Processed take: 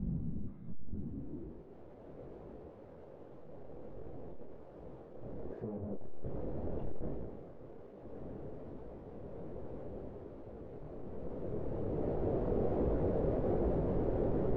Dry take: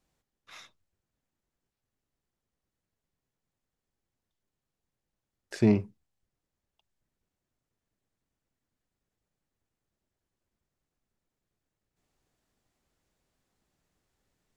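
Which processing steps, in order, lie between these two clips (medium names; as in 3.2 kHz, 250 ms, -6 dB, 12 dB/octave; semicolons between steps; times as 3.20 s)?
one-bit comparator; gain riding 2 s; sine folder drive 13 dB, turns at -38.5 dBFS; low-pass sweep 190 Hz -> 490 Hz, 0.68–1.91 s; detune thickener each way 43 cents; trim +12 dB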